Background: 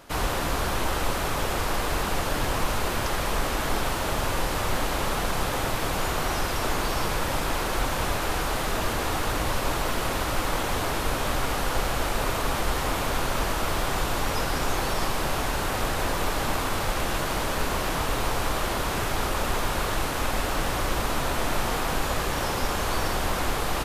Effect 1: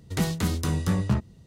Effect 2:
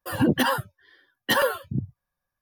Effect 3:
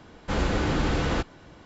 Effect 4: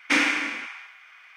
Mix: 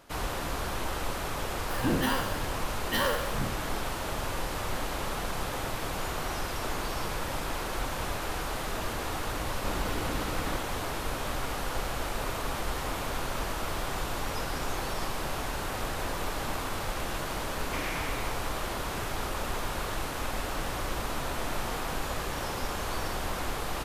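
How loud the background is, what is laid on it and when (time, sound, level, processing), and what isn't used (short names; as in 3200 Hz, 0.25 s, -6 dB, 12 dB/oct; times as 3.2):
background -6.5 dB
1.63 add 2 -10 dB + spectral trails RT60 0.85 s
9.35 add 3 -10.5 dB
17.63 add 4 -10 dB + limiter -19 dBFS
not used: 1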